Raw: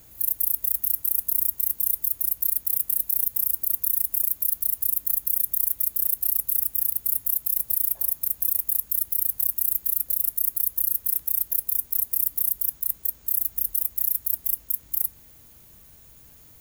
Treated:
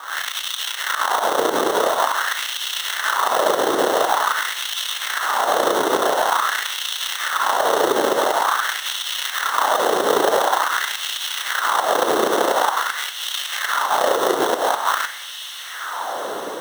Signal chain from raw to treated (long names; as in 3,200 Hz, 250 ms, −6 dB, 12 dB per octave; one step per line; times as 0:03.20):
peak hold with a rise ahead of every peak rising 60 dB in 0.51 s
high-shelf EQ 11,000 Hz +8.5 dB
brickwall limiter −8 dBFS, peak gain reduction 9 dB
sample-rate reduction 2,400 Hz, jitter 0%
feedback delay with all-pass diffusion 1,455 ms, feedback 41%, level −7 dB
auto-filter high-pass sine 0.47 Hz 390–2,900 Hz
level −1 dB